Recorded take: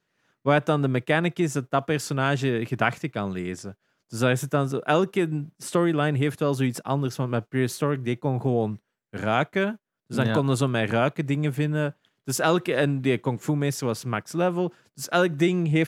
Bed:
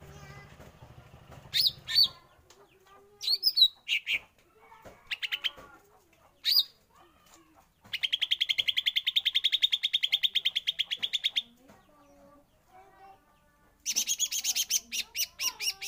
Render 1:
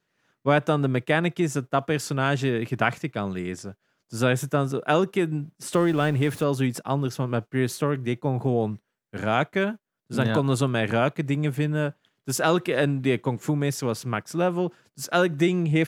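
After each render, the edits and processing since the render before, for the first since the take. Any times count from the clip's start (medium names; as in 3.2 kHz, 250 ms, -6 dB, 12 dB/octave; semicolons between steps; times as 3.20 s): 5.73–6.44 s: jump at every zero crossing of -37 dBFS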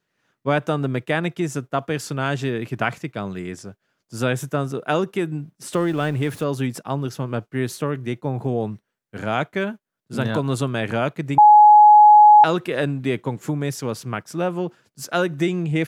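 11.38–12.44 s: bleep 841 Hz -6 dBFS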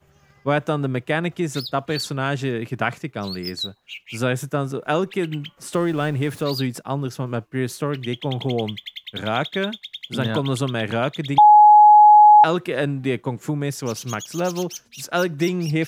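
add bed -7.5 dB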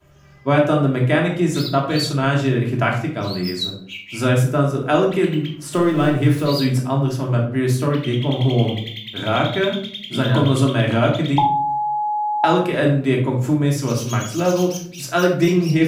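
simulated room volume 730 m³, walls furnished, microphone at 2.9 m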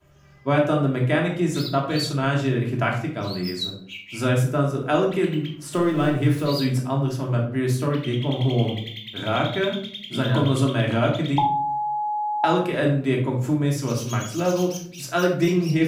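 trim -4 dB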